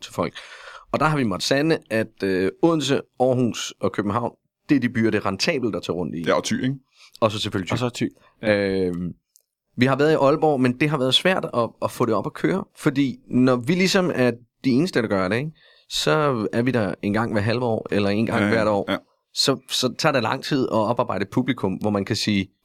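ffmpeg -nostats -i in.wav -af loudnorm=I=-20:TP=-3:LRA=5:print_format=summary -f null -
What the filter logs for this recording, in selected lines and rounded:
Input Integrated:    -22.0 LUFS
Input True Peak:      -3.0 dBTP
Input LRA:             2.8 LU
Input Threshold:     -32.3 LUFS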